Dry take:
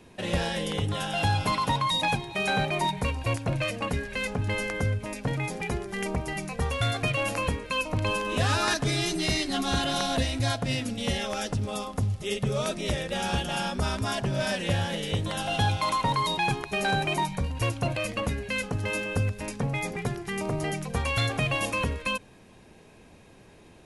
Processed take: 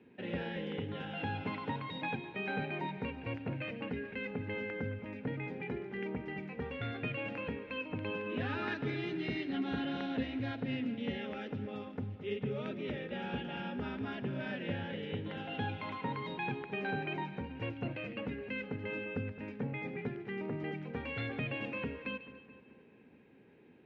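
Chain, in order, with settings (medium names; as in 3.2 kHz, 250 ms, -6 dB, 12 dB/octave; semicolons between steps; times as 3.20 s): cabinet simulation 140–2700 Hz, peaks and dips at 250 Hz +7 dB, 430 Hz +4 dB, 660 Hz -9 dB, 1.1 kHz -10 dB; two-band feedback delay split 2 kHz, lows 215 ms, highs 145 ms, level -13.5 dB; trim -8.5 dB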